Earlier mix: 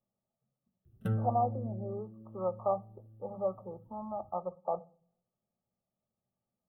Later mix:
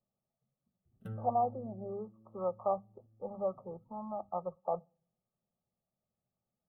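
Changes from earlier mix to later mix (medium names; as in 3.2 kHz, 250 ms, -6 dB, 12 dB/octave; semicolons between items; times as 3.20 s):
speech: send -11.5 dB; background -11.0 dB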